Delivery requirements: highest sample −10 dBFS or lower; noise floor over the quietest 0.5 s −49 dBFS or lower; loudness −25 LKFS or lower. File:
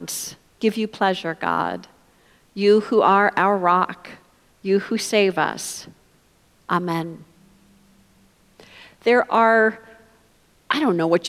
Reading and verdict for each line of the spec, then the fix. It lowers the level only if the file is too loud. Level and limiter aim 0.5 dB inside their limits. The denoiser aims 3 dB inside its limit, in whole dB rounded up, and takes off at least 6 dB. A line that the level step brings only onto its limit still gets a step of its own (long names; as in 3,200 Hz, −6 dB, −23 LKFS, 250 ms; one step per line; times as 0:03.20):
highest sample −5.0 dBFS: out of spec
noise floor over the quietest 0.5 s −58 dBFS: in spec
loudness −20.0 LKFS: out of spec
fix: level −5.5 dB